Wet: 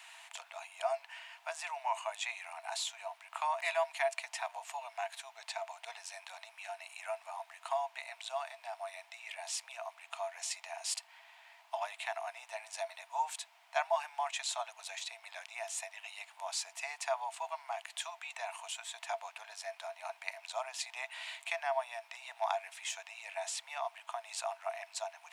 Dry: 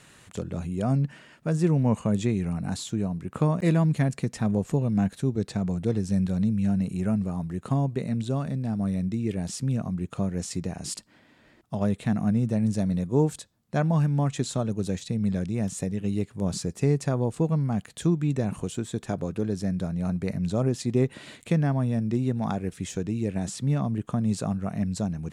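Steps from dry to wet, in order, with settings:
background noise brown −47 dBFS
Chebyshev high-pass with heavy ripple 650 Hz, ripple 9 dB
level +5.5 dB

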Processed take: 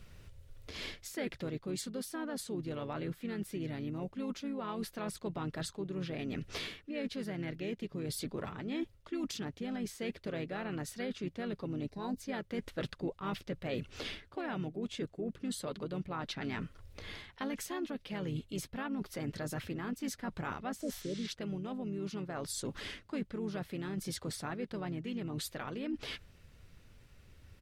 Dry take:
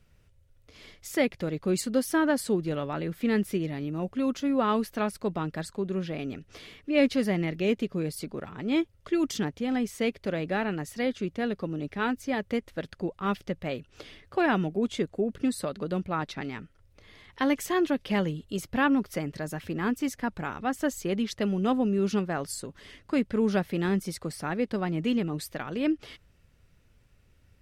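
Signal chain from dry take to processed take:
healed spectral selection 0:20.84–0:21.24, 680–10,000 Hz both
pitch-shifted copies added −4 semitones −7 dB
parametric band 3,900 Hz +3 dB 0.77 octaves
reversed playback
downward compressor 12 to 1, threshold −37 dBFS, peak gain reduction 21 dB
reversed playback
gain on a spectral selection 0:11.89–0:12.17, 1,100–3,700 Hz −16 dB
brickwall limiter −32.5 dBFS, peak gain reduction 7 dB
speech leveller within 3 dB 0.5 s
level +4 dB

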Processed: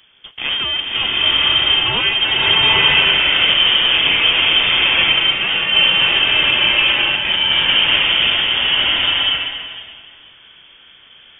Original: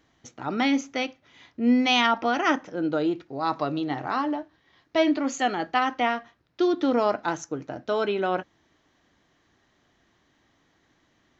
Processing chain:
each half-wave held at its own peak
in parallel at +2.5 dB: compressor whose output falls as the input rises −26 dBFS, ratio −0.5
on the sum: voice inversion scrambler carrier 3,400 Hz
slow-attack reverb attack 940 ms, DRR −7 dB
level −3.5 dB

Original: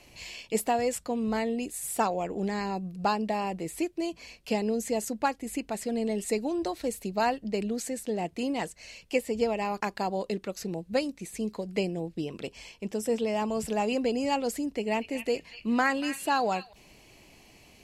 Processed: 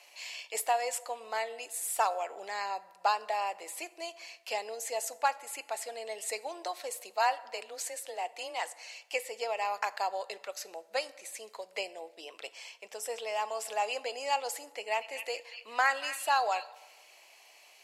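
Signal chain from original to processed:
high-pass filter 620 Hz 24 dB per octave
0:07.10–0:08.82: frequency shifter +24 Hz
convolution reverb RT60 1.2 s, pre-delay 5 ms, DRR 15 dB

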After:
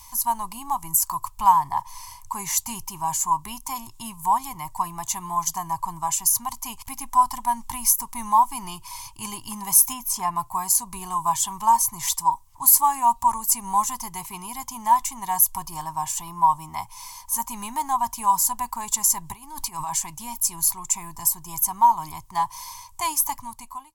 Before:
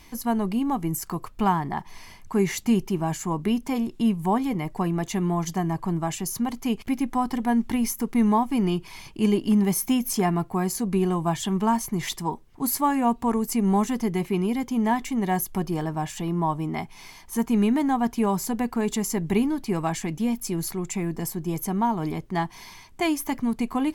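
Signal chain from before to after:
fade-out on the ending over 0.70 s
0:09.92–0:10.35: high-shelf EQ 3,300 Hz → 6,300 Hz −10 dB
0:19.32–0:19.94: compressor whose output falls as the input rises −30 dBFS, ratio −1
drawn EQ curve 110 Hz 0 dB, 190 Hz −18 dB, 310 Hz −19 dB, 460 Hz −26 dB, 680 Hz −9 dB, 990 Hz +13 dB, 1,400 Hz −9 dB, 3,700 Hz 0 dB, 7,500 Hz +13 dB

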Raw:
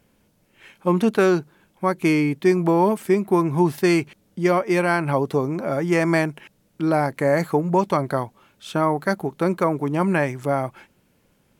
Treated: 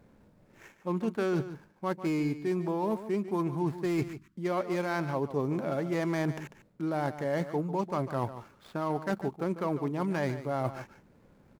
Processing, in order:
running median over 15 samples
reversed playback
downward compressor 8 to 1, threshold −31 dBFS, peak gain reduction 18 dB
reversed playback
time-frequency box erased 0:04.03–0:04.36, 390–930 Hz
single-tap delay 146 ms −12.5 dB
level +3 dB

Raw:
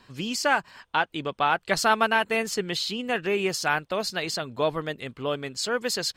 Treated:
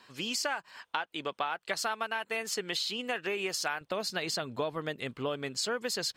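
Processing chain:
high-pass filter 530 Hz 6 dB per octave, from 0:03.81 100 Hz
downward compressor 10 to 1, threshold −29 dBFS, peak gain reduction 13 dB

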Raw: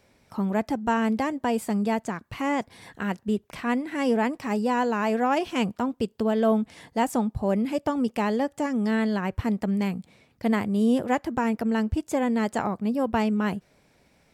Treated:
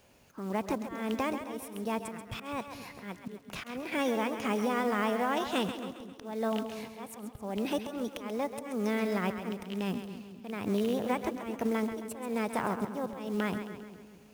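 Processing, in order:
loose part that buzzes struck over −24 dBFS, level −21 dBFS
downward compressor 20 to 1, threshold −25 dBFS, peak gain reduction 9.5 dB
formants moved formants +3 semitones
log-companded quantiser 6 bits
volume swells 275 ms
echo with a time of its own for lows and highs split 450 Hz, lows 215 ms, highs 134 ms, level −9 dB
level −1 dB

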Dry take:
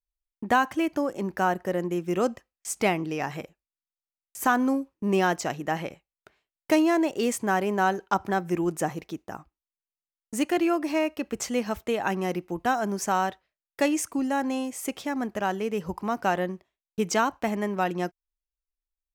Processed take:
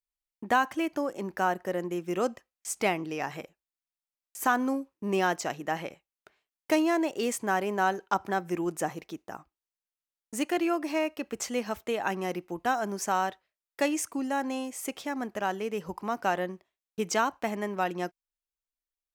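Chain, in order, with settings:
low-shelf EQ 180 Hz −9 dB
level −2 dB

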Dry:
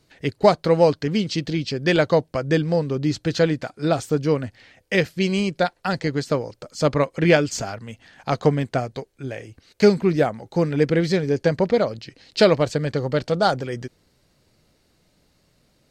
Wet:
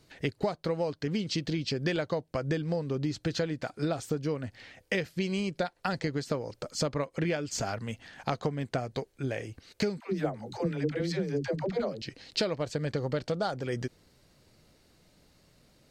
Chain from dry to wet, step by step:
downward compressor 10 to 1, threshold −27 dBFS, peak gain reduction 18 dB
0:10.00–0:12.02: all-pass dispersion lows, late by 104 ms, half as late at 370 Hz

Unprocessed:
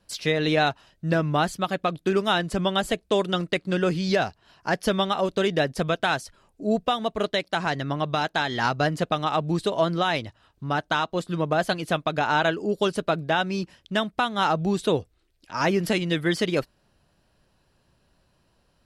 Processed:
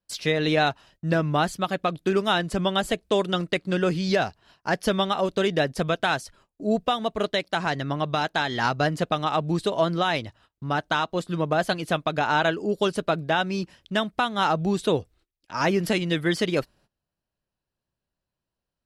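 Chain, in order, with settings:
noise gate −54 dBFS, range −21 dB

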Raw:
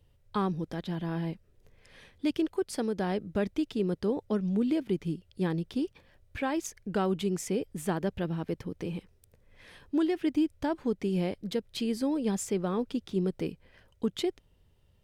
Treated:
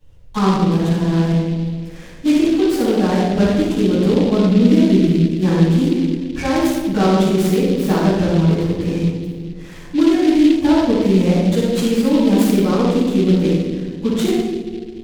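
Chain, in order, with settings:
on a send: delay with a low-pass on its return 215 ms, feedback 53%, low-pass 630 Hz, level −10 dB
on the sum: rectangular room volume 670 cubic metres, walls mixed, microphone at 9.1 metres
short delay modulated by noise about 3,000 Hz, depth 0.037 ms
level −2.5 dB

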